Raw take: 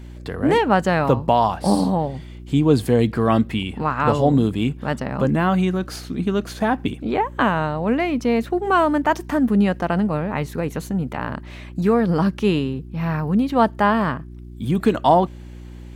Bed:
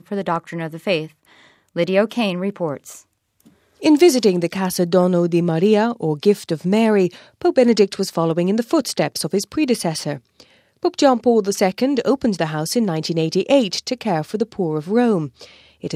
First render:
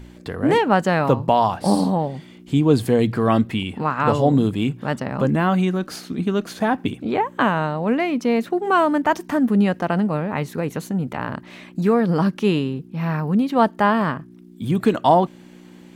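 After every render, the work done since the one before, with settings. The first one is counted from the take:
hum removal 60 Hz, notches 2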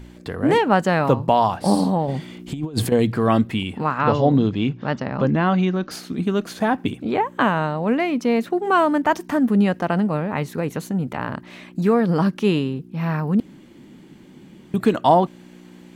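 0:02.08–0:02.92: compressor whose output falls as the input rises −22 dBFS, ratio −0.5
0:03.98–0:05.91: Butterworth low-pass 6,200 Hz 48 dB per octave
0:13.40–0:14.74: fill with room tone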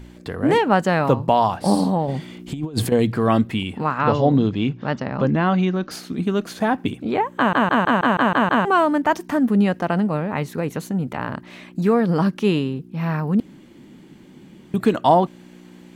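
0:07.37: stutter in place 0.16 s, 8 plays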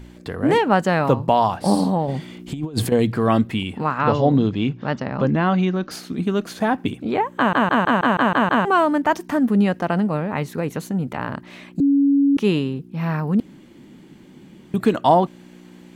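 0:11.80–0:12.37: beep over 280 Hz −12.5 dBFS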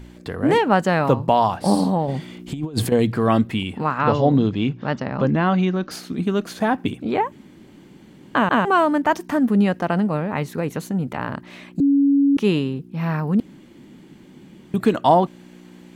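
0:07.32–0:08.35: fill with room tone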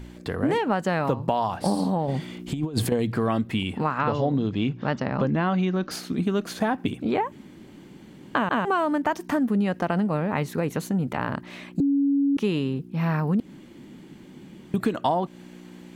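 downward compressor, threshold −20 dBFS, peak gain reduction 10.5 dB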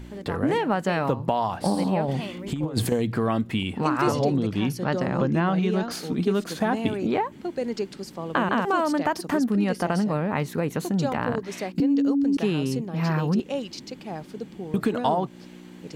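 mix in bed −15 dB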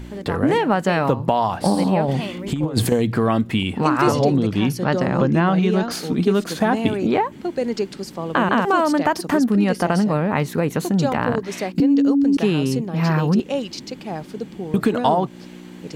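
level +5.5 dB
brickwall limiter −3 dBFS, peak gain reduction 1.5 dB

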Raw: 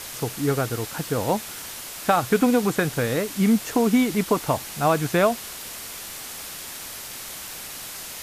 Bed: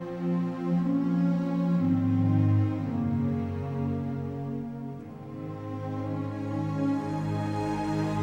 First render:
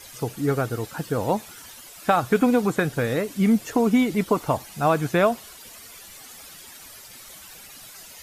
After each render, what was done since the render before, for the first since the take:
broadband denoise 12 dB, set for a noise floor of −37 dBFS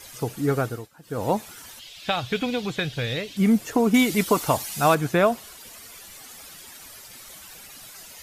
0:00.64–0:01.27: duck −19 dB, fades 0.25 s
0:01.79–0:03.37: drawn EQ curve 120 Hz 0 dB, 250 Hz −9 dB, 600 Hz −6 dB, 1,300 Hz −9 dB, 3,400 Hz +11 dB, 9,200 Hz −10 dB
0:03.94–0:04.95: high-shelf EQ 2,100 Hz +11 dB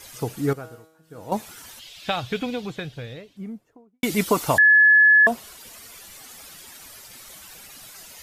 0:00.53–0:01.32: tuned comb filter 160 Hz, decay 0.83 s, mix 80%
0:01.91–0:04.03: fade out and dull
0:04.58–0:05.27: beep over 1,710 Hz −10.5 dBFS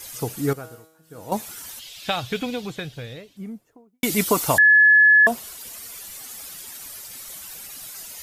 high-shelf EQ 6,000 Hz +9 dB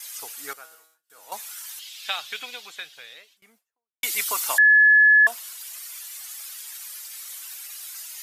high-pass filter 1,300 Hz 12 dB per octave
noise gate with hold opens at −48 dBFS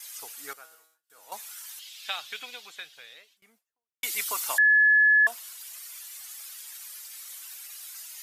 level −4.5 dB

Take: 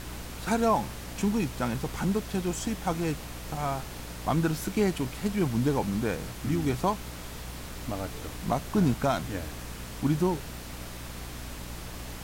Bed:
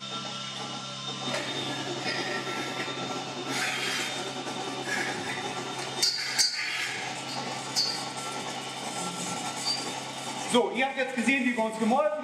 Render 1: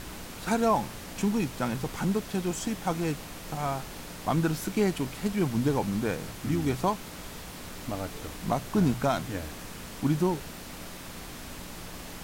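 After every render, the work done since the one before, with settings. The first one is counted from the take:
hum removal 60 Hz, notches 2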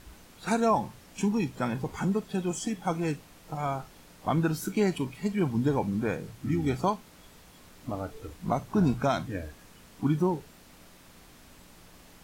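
noise reduction from a noise print 12 dB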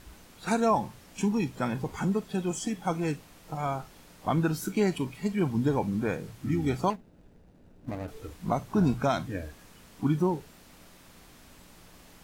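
0:06.90–0:08.08: running median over 41 samples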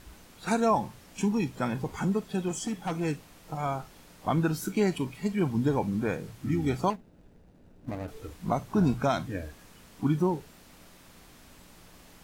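0:02.48–0:03.01: gain into a clipping stage and back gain 26.5 dB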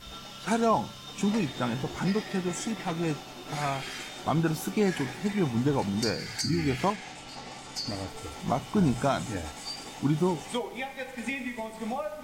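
mix in bed −8.5 dB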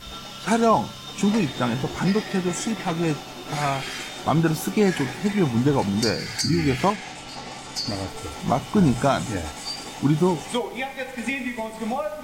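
level +6 dB

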